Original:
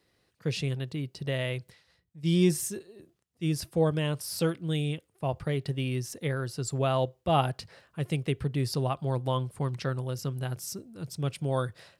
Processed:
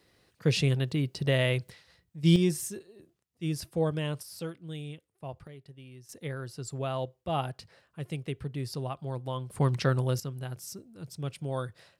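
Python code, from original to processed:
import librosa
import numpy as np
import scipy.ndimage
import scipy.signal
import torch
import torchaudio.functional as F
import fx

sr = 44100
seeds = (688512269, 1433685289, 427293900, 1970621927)

y = fx.gain(x, sr, db=fx.steps((0.0, 5.0), (2.36, -3.0), (4.23, -10.0), (5.47, -18.5), (6.09, -6.0), (9.5, 5.0), (10.2, -4.5)))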